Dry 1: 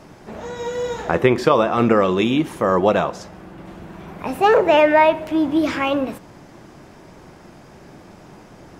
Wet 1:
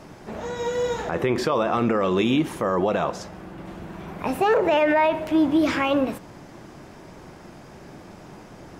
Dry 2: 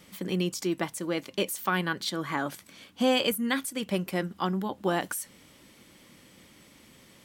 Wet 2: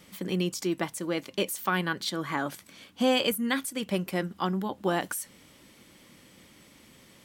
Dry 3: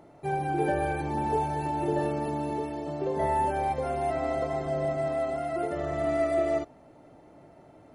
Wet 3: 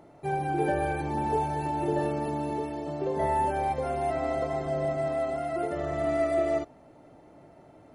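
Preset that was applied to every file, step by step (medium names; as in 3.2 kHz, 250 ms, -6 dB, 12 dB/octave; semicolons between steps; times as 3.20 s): peak limiter -12 dBFS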